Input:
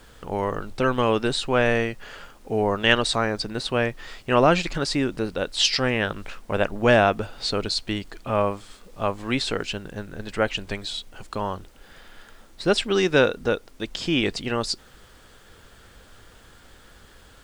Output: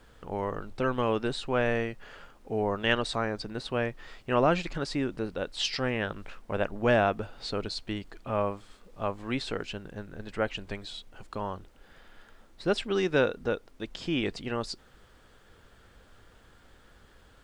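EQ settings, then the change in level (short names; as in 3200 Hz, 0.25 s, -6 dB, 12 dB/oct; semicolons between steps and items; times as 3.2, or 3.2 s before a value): high shelf 3500 Hz -7.5 dB; -6.0 dB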